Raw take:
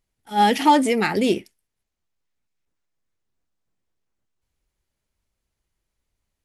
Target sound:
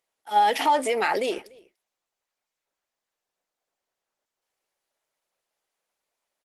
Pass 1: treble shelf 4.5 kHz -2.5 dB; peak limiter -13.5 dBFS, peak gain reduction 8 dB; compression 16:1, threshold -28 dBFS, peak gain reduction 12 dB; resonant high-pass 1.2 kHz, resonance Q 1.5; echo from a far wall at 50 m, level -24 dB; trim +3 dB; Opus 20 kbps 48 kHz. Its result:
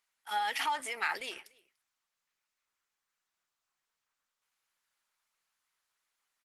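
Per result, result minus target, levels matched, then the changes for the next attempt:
500 Hz band -11.0 dB; compression: peak gain reduction +7.5 dB
change: resonant high-pass 600 Hz, resonance Q 1.5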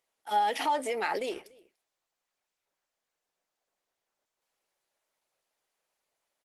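compression: peak gain reduction +7.5 dB
change: compression 16:1, threshold -20 dBFS, peak gain reduction 4.5 dB

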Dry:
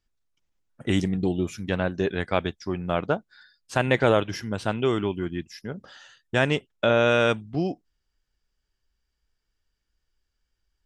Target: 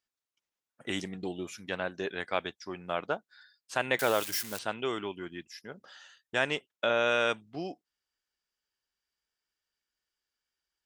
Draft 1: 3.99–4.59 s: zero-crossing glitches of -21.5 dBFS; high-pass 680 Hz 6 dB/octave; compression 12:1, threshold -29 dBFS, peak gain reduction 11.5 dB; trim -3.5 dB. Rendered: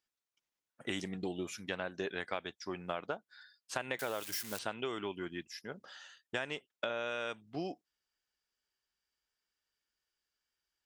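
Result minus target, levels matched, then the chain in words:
compression: peak gain reduction +11.5 dB
3.99–4.59 s: zero-crossing glitches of -21.5 dBFS; high-pass 680 Hz 6 dB/octave; trim -3.5 dB

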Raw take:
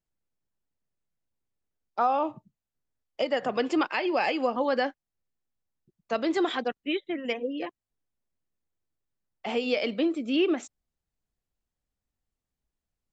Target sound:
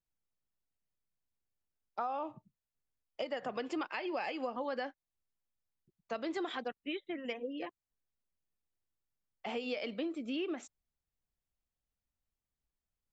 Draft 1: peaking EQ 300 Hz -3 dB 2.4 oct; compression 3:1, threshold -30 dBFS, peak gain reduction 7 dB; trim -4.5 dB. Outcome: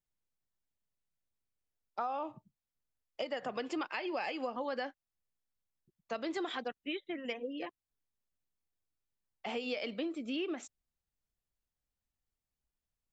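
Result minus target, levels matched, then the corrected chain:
8 kHz band +2.5 dB
peaking EQ 300 Hz -3 dB 2.4 oct; compression 3:1, threshold -30 dBFS, peak gain reduction 7 dB; treble shelf 2.9 kHz -3.5 dB; trim -4.5 dB

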